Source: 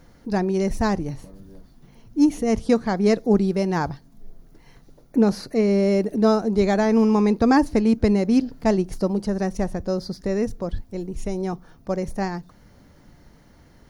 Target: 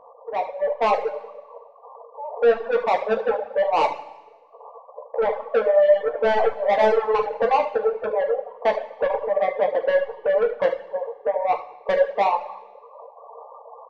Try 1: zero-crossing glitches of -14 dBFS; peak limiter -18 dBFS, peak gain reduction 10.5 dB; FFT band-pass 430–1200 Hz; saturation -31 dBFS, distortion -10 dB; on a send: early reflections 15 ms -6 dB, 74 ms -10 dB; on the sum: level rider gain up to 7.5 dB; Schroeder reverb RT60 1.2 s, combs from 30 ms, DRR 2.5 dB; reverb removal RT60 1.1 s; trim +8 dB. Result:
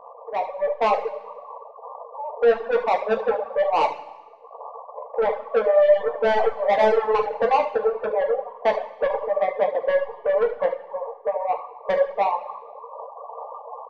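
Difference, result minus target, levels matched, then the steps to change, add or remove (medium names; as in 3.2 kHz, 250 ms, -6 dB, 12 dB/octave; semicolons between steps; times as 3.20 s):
zero-crossing glitches: distortion +11 dB
change: zero-crossing glitches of -25.5 dBFS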